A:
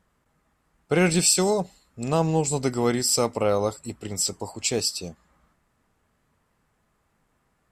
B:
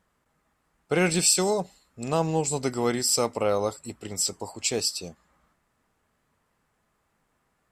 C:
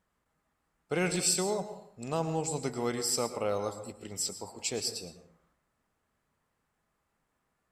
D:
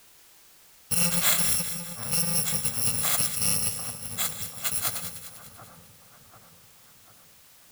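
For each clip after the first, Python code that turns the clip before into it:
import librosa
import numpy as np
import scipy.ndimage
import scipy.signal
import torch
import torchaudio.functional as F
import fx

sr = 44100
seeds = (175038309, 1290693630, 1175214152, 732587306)

y1 = fx.low_shelf(x, sr, hz=240.0, db=-5.0)
y1 = y1 * librosa.db_to_amplitude(-1.0)
y2 = fx.rev_plate(y1, sr, seeds[0], rt60_s=0.67, hf_ratio=0.5, predelay_ms=95, drr_db=10.0)
y2 = y2 * librosa.db_to_amplitude(-7.0)
y3 = fx.bit_reversed(y2, sr, seeds[1], block=128)
y3 = fx.echo_split(y3, sr, split_hz=1400.0, low_ms=742, high_ms=198, feedback_pct=52, wet_db=-10.5)
y3 = fx.quant_dither(y3, sr, seeds[2], bits=10, dither='triangular')
y3 = y3 * librosa.db_to_amplitude(5.5)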